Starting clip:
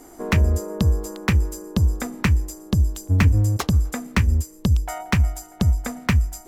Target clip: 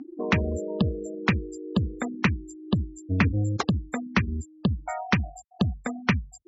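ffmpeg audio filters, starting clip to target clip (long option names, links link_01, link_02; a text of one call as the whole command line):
ffmpeg -i in.wav -af "afftfilt=real='re*gte(hypot(re,im),0.0447)':imag='im*gte(hypot(re,im),0.0447)':win_size=1024:overlap=0.75,acompressor=mode=upward:threshold=-28dB:ratio=2.5,highpass=150,lowpass=5800" out.wav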